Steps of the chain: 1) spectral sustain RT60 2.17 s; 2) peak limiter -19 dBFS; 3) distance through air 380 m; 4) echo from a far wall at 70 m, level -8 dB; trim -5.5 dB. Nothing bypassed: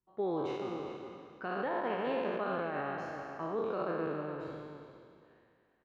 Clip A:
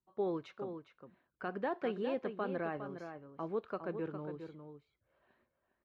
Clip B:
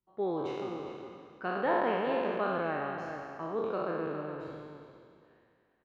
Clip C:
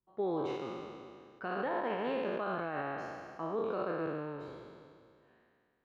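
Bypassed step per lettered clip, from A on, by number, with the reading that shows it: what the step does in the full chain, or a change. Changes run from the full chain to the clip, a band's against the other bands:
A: 1, 125 Hz band +3.5 dB; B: 2, crest factor change +4.5 dB; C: 4, echo-to-direct -9.0 dB to none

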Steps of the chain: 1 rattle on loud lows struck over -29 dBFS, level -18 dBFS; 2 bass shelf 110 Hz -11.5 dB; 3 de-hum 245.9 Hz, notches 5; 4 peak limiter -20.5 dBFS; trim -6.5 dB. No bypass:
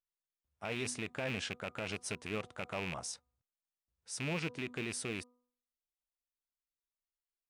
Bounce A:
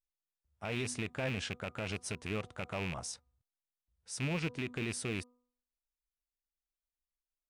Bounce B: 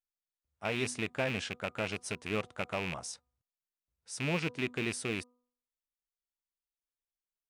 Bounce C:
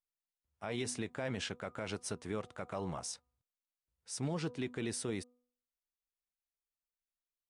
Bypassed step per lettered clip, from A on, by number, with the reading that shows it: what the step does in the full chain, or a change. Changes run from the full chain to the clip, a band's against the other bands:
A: 2, 125 Hz band +4.5 dB; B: 4, mean gain reduction 2.5 dB; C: 1, 2 kHz band -6.5 dB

